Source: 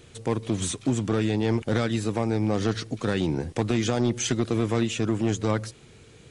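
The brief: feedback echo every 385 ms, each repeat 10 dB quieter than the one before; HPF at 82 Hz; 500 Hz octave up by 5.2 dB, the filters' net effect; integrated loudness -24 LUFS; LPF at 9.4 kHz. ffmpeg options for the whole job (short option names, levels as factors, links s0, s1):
-af "highpass=82,lowpass=9400,equalizer=f=500:t=o:g=6.5,aecho=1:1:385|770|1155|1540:0.316|0.101|0.0324|0.0104,volume=0.944"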